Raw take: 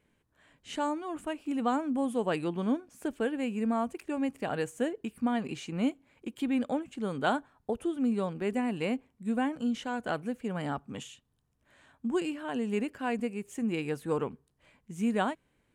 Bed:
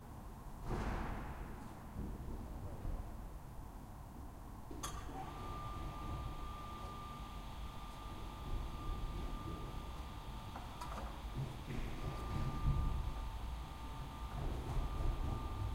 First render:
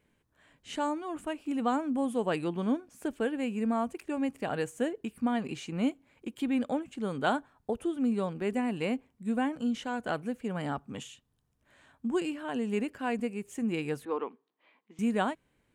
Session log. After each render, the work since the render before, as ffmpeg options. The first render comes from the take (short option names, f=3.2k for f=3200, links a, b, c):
-filter_complex "[0:a]asettb=1/sr,asplit=3[a][b][c];[a]atrim=end=14.054[d];[b]atrim=start=14.05:end=14.99,asetpts=PTS-STARTPTS,afade=t=in:d=0.004:c=qsin,afade=t=out:st=0.936:d=0.004:c=qsin,highpass=f=300:w=0.5412,highpass=f=300:w=1.3066,equalizer=f=370:t=q:w=4:g=-3,equalizer=f=570:t=q:w=4:g=-6,equalizer=f=1.1k:t=q:w=4:g=3,equalizer=f=1.5k:t=q:w=4:g=-6,equalizer=f=2.8k:t=q:w=4:g=-3,lowpass=f=3.7k:w=0.5412,lowpass=f=3.7k:w=1.3066[e];[c]atrim=start=14.986[f];[d][e]acrossfade=d=0.004:c1=hsin:c2=qsin[g];[g][f]acrossfade=d=0.004:c1=qsin:c2=hsin"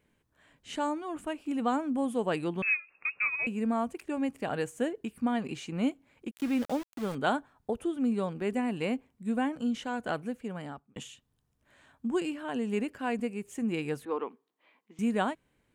-filter_complex "[0:a]asettb=1/sr,asplit=3[a][b][c];[a]atrim=end=2.624[d];[b]atrim=start=2.62:end=3.47,asetpts=PTS-STARTPTS,afade=t=in:d=0.004:c=qsin,afade=t=out:st=0.846:d=0.004:c=qsin,lowpass=f=2.4k:t=q:w=0.5098,lowpass=f=2.4k:t=q:w=0.6013,lowpass=f=2.4k:t=q:w=0.9,lowpass=f=2.4k:t=q:w=2.563,afreqshift=-2800[e];[c]atrim=start=3.466[f];[d][e]acrossfade=d=0.004:c1=hsin:c2=qsin[g];[g][f]acrossfade=d=0.004:c1=qsin:c2=hsin,asettb=1/sr,asplit=3[h][i][j];[h]atrim=end=6.314[k];[i]atrim=start=6.31:end=7.15,asetpts=PTS-STARTPTS,afade=t=in:d=0.004:c=qsin,afade=t=out:st=0.836:d=0.004:c=qsin,aeval=exprs='val(0)*gte(abs(val(0)),0.0119)':c=same[l];[j]atrim=start=7.146[m];[k][l]acrossfade=d=0.004:c1=hsin:c2=qsin[n];[n][m]acrossfade=d=0.004:c1=qsin:c2=hsin,asplit=2[o][p];[o]atrim=end=10.96,asetpts=PTS-STARTPTS,afade=t=out:st=9.99:d=0.97:c=qsin[q];[p]atrim=start=10.96,asetpts=PTS-STARTPTS,afade=t=in:d=0.004:c=hsin[r];[q][r]concat=n=2:v=0:a=1"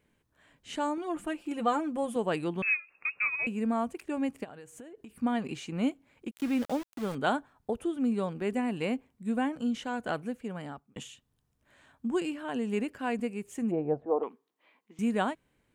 -filter_complex "[0:a]asettb=1/sr,asplit=3[a][b][c];[a]atrim=end=0.974[d];[b]atrim=start=0.97:end=2.16,asetpts=PTS-STARTPTS,afade=t=in:d=0.004:c=qsin,afade=t=out:st=1.186:d=0.004:c=qsin,aecho=1:1:5.8:0.69,atrim=end_sample=52479[e];[c]atrim=start=2.156[f];[d][e]acrossfade=d=0.004:c1=hsin:c2=qsin[g];[g][f]acrossfade=d=0.004:c1=qsin:c2=hsin,asplit=3[h][i][j];[h]afade=t=out:st=4.43:d=0.02[k];[i]acompressor=threshold=-43dB:ratio=12:attack=3.2:release=140:knee=1:detection=peak,afade=t=in:st=4.43:d=0.02,afade=t=out:st=5.09:d=0.02[l];[j]afade=t=in:st=5.09:d=0.02[m];[k][l][m]amix=inputs=3:normalize=0,asplit=3[n][o][p];[n]afade=t=out:st=13.7:d=0.02[q];[o]lowpass=f=680:t=q:w=7.1,afade=t=in:st=13.7:d=0.02,afade=t=out:st=14.22:d=0.02[r];[p]afade=t=in:st=14.22:d=0.02[s];[q][r][s]amix=inputs=3:normalize=0"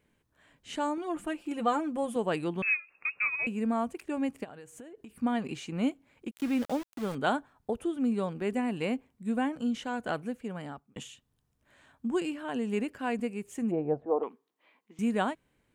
-af anull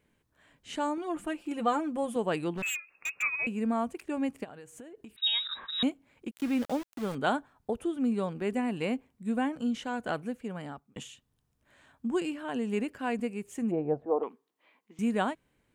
-filter_complex "[0:a]asplit=3[a][b][c];[a]afade=t=out:st=2.53:d=0.02[d];[b]aeval=exprs='0.0398*(abs(mod(val(0)/0.0398+3,4)-2)-1)':c=same,afade=t=in:st=2.53:d=0.02,afade=t=out:st=3.21:d=0.02[e];[c]afade=t=in:st=3.21:d=0.02[f];[d][e][f]amix=inputs=3:normalize=0,asettb=1/sr,asplit=3[g][h][i];[g]atrim=end=5.164[j];[h]atrim=start=5.16:end=5.83,asetpts=PTS-STARTPTS,afade=t=in:d=0.004:c=qsin,afade=t=out:st=0.666:d=0.004:c=qsin,lowpass=f=3.4k:t=q:w=0.5098,lowpass=f=3.4k:t=q:w=0.6013,lowpass=f=3.4k:t=q:w=0.9,lowpass=f=3.4k:t=q:w=2.563,afreqshift=-4000[k];[i]atrim=start=5.826[l];[j][k]acrossfade=d=0.004:c1=hsin:c2=qsin[m];[m][l]acrossfade=d=0.004:c1=qsin:c2=hsin"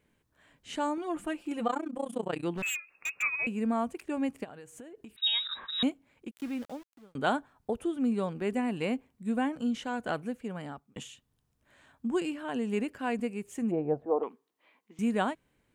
-filter_complex "[0:a]asettb=1/sr,asplit=3[a][b][c];[a]atrim=end=1.674[d];[b]atrim=start=1.67:end=2.44,asetpts=PTS-STARTPTS,afade=t=in:d=0.004:c=qsin,afade=t=out:st=0.766:d=0.004:c=qsin,tremolo=f=30:d=0.947[e];[c]atrim=start=2.436[f];[d][e]acrossfade=d=0.004:c1=hsin:c2=qsin[g];[g][f]acrossfade=d=0.004:c1=qsin:c2=hsin,asplit=2[h][i];[h]atrim=end=7.15,asetpts=PTS-STARTPTS,afade=t=out:st=5.86:d=1.29[j];[i]atrim=start=7.15,asetpts=PTS-STARTPTS,afade=t=in:d=0.004:c=hsin[k];[j][k]concat=n=2:v=0:a=1"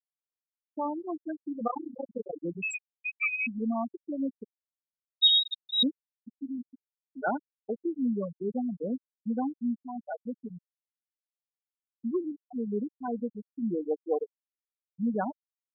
-af "afftfilt=real='re*gte(hypot(re,im),0.141)':imag='im*gte(hypot(re,im),0.141)':win_size=1024:overlap=0.75,equalizer=f=4.6k:t=o:w=0.71:g=14"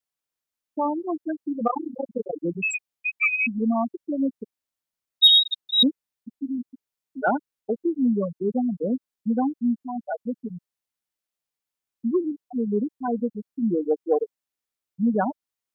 -af "acontrast=88"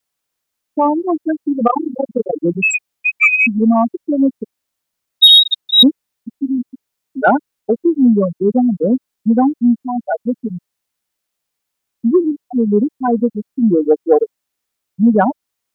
-filter_complex "[0:a]asplit=2[a][b];[b]acontrast=62,volume=-3dB[c];[a][c]amix=inputs=2:normalize=0,alimiter=level_in=3dB:limit=-1dB:release=50:level=0:latency=1"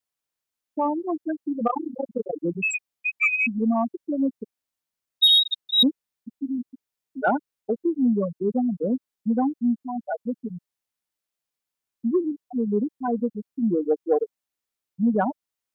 -af "volume=-10dB"